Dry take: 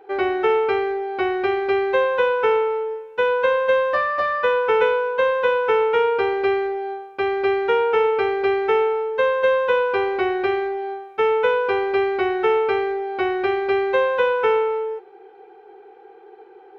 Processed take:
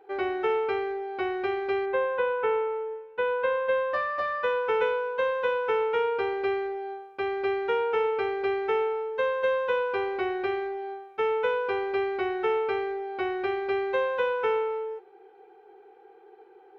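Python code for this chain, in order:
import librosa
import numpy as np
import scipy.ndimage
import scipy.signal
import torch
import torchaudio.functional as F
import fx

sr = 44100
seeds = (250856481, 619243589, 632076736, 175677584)

y = fx.lowpass(x, sr, hz=fx.line((1.85, 2400.0), (3.92, 3500.0)), slope=12, at=(1.85, 3.92), fade=0.02)
y = F.gain(torch.from_numpy(y), -7.5).numpy()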